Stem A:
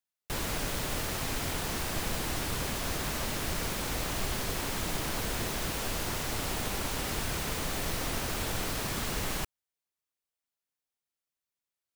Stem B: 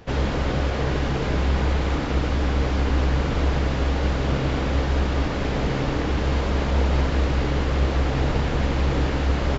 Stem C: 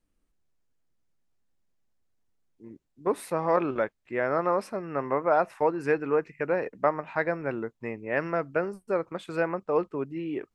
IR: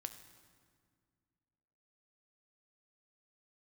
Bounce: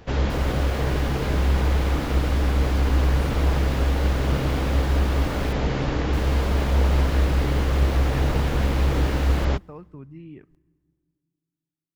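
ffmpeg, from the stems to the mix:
-filter_complex "[0:a]volume=0.266,asplit=3[s0][s1][s2];[s0]atrim=end=5.53,asetpts=PTS-STARTPTS,afade=t=out:st=5.526:d=0.004:c=hsin[s3];[s1]atrim=start=5.53:end=6.13,asetpts=PTS-STARTPTS,volume=0[s4];[s2]atrim=start=6.13,asetpts=PTS-STARTPTS,afade=t=in:d=0.004:c=hsin[s5];[s3][s4][s5]concat=n=3:v=0:a=1,asplit=2[s6][s7];[s7]volume=0.447[s8];[1:a]volume=0.794,asplit=2[s9][s10];[s10]volume=0.133[s11];[2:a]asubboost=boost=10.5:cutoff=140,acompressor=threshold=0.0112:ratio=2.5,volume=0.562,asplit=2[s12][s13];[s13]volume=0.335[s14];[3:a]atrim=start_sample=2205[s15];[s8][s11][s14]amix=inputs=3:normalize=0[s16];[s16][s15]afir=irnorm=-1:irlink=0[s17];[s6][s9][s12][s17]amix=inputs=4:normalize=0,equalizer=f=63:t=o:w=0.77:g=3.5"

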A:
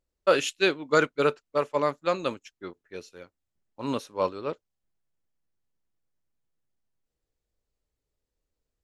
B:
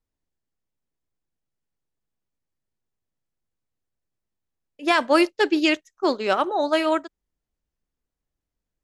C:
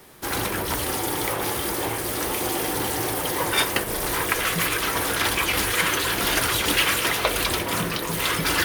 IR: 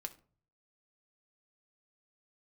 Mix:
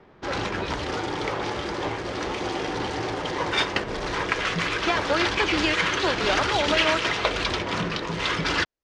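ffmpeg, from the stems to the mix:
-filter_complex "[0:a]volume=0.188[s0];[1:a]highpass=370,acompressor=threshold=0.0891:ratio=6,volume=1[s1];[2:a]adynamicsmooth=sensitivity=8:basefreq=1700,volume=0.668,asplit=2[s2][s3];[s3]volume=0.501[s4];[3:a]atrim=start_sample=2205[s5];[s4][s5]afir=irnorm=-1:irlink=0[s6];[s0][s1][s2][s6]amix=inputs=4:normalize=0,lowpass=f=6200:w=0.5412,lowpass=f=6200:w=1.3066"

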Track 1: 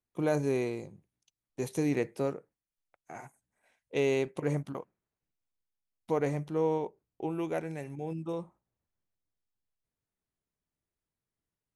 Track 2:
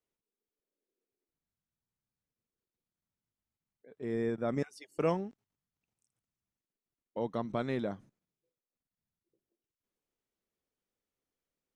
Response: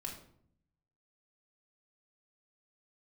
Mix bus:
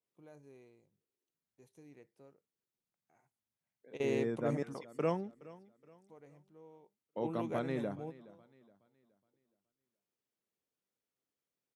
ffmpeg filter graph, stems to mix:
-filter_complex "[0:a]volume=0.473[s0];[1:a]highpass=f=88:w=0.5412,highpass=f=88:w=1.3066,volume=0.708,asplit=3[s1][s2][s3];[s2]volume=0.1[s4];[s3]apad=whole_len=518261[s5];[s0][s5]sidechaingate=range=0.0794:threshold=0.00112:ratio=16:detection=peak[s6];[s4]aecho=0:1:420|840|1260|1680|2100:1|0.36|0.13|0.0467|0.0168[s7];[s6][s1][s7]amix=inputs=3:normalize=0,adynamicequalizer=threshold=0.00251:dfrequency=2000:dqfactor=0.7:tfrequency=2000:tqfactor=0.7:attack=5:release=100:ratio=0.375:range=2:mode=cutabove:tftype=highshelf"

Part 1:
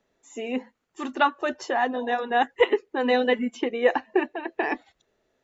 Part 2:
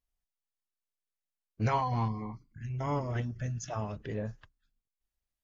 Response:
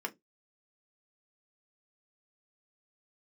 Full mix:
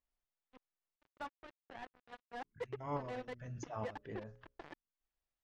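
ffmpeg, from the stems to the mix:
-filter_complex "[0:a]flanger=delay=0.9:depth=3:regen=70:speed=1.2:shape=triangular,acrusher=bits=3:mix=0:aa=0.5,volume=0.119,asplit=2[s0][s1];[1:a]lowshelf=f=230:g=-9,bandreject=f=60:t=h:w=6,bandreject=f=120:t=h:w=6,bandreject=f=180:t=h:w=6,bandreject=f=240:t=h:w=6,bandreject=f=300:t=h:w=6,bandreject=f=360:t=h:w=6,bandreject=f=420:t=h:w=6,bandreject=f=480:t=h:w=6,bandreject=f=540:t=h:w=6,bandreject=f=600:t=h:w=6,volume=1.33,asplit=3[s2][s3][s4];[s2]atrim=end=0.96,asetpts=PTS-STARTPTS,afade=t=out:st=0.956:d=0.004:c=hsin[s5];[s3]atrim=start=0.96:end=2.44,asetpts=PTS-STARTPTS,volume=0[s6];[s4]atrim=start=2.44,asetpts=PTS-STARTPTS,afade=t=in:d=0.004:c=hsin[s7];[s5][s6][s7]concat=n=3:v=0:a=1[s8];[s1]apad=whole_len=239534[s9];[s8][s9]sidechaincompress=threshold=0.00158:ratio=5:attack=41:release=268[s10];[s0][s10]amix=inputs=2:normalize=0,lowpass=f=1600:p=1"

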